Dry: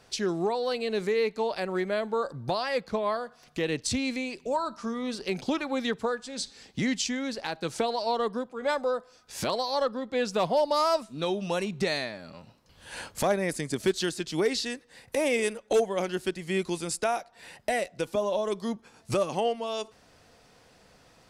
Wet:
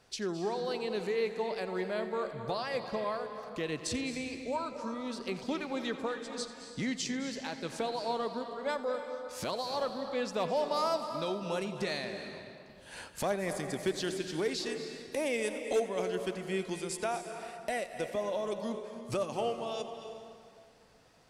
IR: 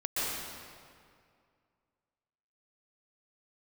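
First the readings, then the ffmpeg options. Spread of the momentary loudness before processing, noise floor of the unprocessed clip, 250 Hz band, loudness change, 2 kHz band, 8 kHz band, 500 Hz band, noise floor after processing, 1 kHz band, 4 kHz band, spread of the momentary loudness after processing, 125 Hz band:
8 LU, −59 dBFS, −5.5 dB, −5.5 dB, −5.5 dB, −6.0 dB, −5.5 dB, −55 dBFS, −5.5 dB, −6.0 dB, 8 LU, −5.5 dB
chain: -filter_complex "[0:a]asplit=2[link_01][link_02];[1:a]atrim=start_sample=2205,adelay=88[link_03];[link_02][link_03]afir=irnorm=-1:irlink=0,volume=-14.5dB[link_04];[link_01][link_04]amix=inputs=2:normalize=0,volume=-6.5dB"

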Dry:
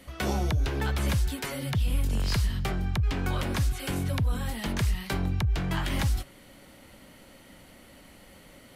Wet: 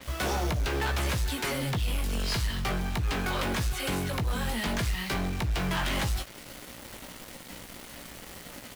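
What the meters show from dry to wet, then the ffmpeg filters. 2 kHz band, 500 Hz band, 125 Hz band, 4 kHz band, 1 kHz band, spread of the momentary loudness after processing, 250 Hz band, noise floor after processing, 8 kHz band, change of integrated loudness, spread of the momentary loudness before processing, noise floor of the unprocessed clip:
+3.5 dB, +2.0 dB, −3.5 dB, +3.0 dB, +3.0 dB, 14 LU, −1.0 dB, −47 dBFS, +3.0 dB, −1.0 dB, 4 LU, −53 dBFS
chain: -filter_complex "[0:a]acrossover=split=420[link_01][link_02];[link_01]acompressor=threshold=-33dB:ratio=6[link_03];[link_03][link_02]amix=inputs=2:normalize=0,volume=31.5dB,asoftclip=hard,volume=-31.5dB,acrusher=bits=7:mix=0:aa=0.000001,asplit=2[link_04][link_05];[link_05]adelay=17,volume=-8dB[link_06];[link_04][link_06]amix=inputs=2:normalize=0,adynamicequalizer=threshold=0.00251:dfrequency=6500:dqfactor=0.7:tfrequency=6500:tqfactor=0.7:attack=5:release=100:ratio=0.375:range=2:mode=cutabove:tftype=highshelf,volume=6dB"

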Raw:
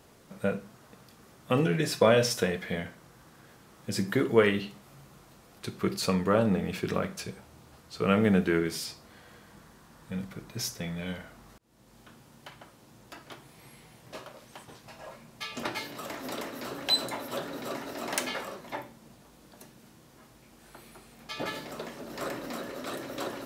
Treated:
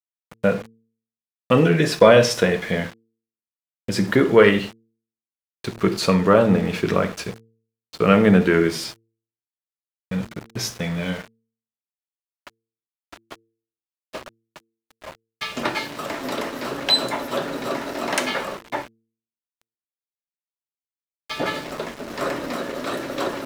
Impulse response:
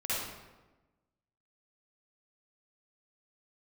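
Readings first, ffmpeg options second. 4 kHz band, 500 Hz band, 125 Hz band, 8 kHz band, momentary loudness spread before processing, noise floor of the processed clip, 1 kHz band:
+7.5 dB, +10.0 dB, +8.5 dB, +5.0 dB, 23 LU, below −85 dBFS, +9.5 dB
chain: -filter_complex "[0:a]agate=range=-33dB:threshold=-42dB:ratio=3:detection=peak,acontrast=61,lowshelf=frequency=140:gain=-4,bandreject=frequency=760:width=25,asplit=2[link_01][link_02];[1:a]atrim=start_sample=2205,afade=type=out:start_time=0.17:duration=0.01,atrim=end_sample=7938[link_03];[link_02][link_03]afir=irnorm=-1:irlink=0,volume=-21dB[link_04];[link_01][link_04]amix=inputs=2:normalize=0,aeval=exprs='val(0)*gte(abs(val(0)),0.0158)':channel_layout=same,lowpass=frequency=3900:poles=1,bandreject=frequency=112.7:width_type=h:width=4,bandreject=frequency=225.4:width_type=h:width=4,bandreject=frequency=338.1:width_type=h:width=4,bandreject=frequency=450.8:width_type=h:width=4,volume=4dB"

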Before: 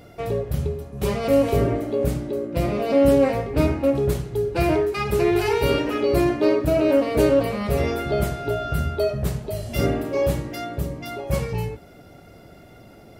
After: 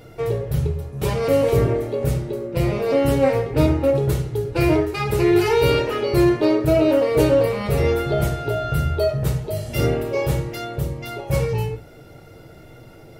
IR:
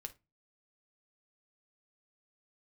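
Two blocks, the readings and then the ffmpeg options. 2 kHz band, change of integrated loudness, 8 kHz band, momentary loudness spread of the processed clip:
+2.0 dB, +2.0 dB, +2.0 dB, 9 LU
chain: -filter_complex "[1:a]atrim=start_sample=2205[link_01];[0:a][link_01]afir=irnorm=-1:irlink=0,volume=6.5dB"

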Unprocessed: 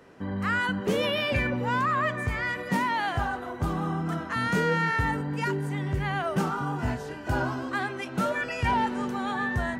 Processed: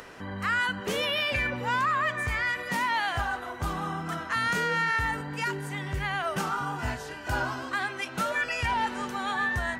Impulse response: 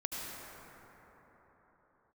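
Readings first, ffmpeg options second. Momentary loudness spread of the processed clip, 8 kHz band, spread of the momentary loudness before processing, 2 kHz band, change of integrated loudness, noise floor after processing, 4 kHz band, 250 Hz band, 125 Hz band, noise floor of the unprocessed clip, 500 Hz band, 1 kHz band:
7 LU, +4.0 dB, 6 LU, +2.0 dB, −0.5 dB, −40 dBFS, +2.5 dB, −7.5 dB, −6.0 dB, −37 dBFS, −4.5 dB, −0.5 dB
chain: -af "equalizer=frequency=210:width=0.31:gain=-12,alimiter=limit=-23.5dB:level=0:latency=1:release=122,acompressor=mode=upward:threshold=-43dB:ratio=2.5,volume=5dB"

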